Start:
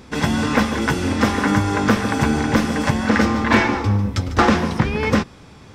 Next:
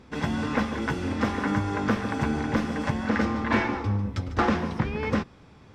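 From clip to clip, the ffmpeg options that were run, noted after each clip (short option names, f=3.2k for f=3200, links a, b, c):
-af "lowpass=f=3.2k:p=1,volume=-8dB"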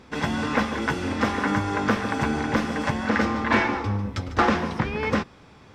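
-af "lowshelf=f=340:g=-6,volume=5dB"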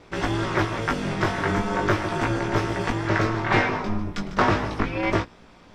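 -af "aeval=exprs='val(0)*sin(2*PI*110*n/s)':c=same,flanger=delay=17.5:depth=2.9:speed=0.36,volume=6dB"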